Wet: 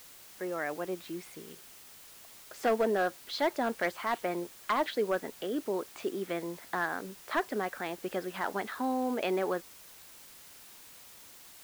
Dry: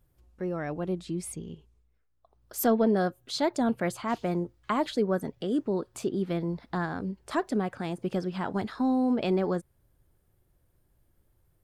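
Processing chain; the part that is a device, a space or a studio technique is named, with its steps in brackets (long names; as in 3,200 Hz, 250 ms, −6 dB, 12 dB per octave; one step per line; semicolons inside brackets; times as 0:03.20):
drive-through speaker (band-pass filter 400–3,700 Hz; parametric band 1,900 Hz +6 dB 0.77 octaves; hard clipping −21 dBFS, distortion −17 dB; white noise bed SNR 18 dB)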